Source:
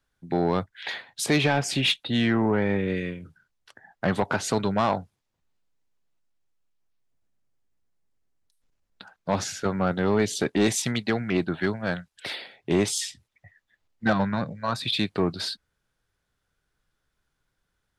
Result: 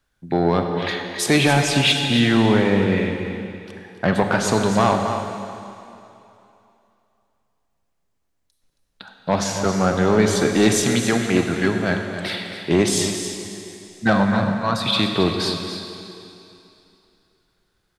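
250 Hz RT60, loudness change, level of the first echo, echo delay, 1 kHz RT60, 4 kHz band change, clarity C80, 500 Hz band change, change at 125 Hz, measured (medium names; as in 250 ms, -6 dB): 2.6 s, +6.5 dB, -10.0 dB, 271 ms, 3.0 s, +6.5 dB, 4.5 dB, +6.5 dB, +7.0 dB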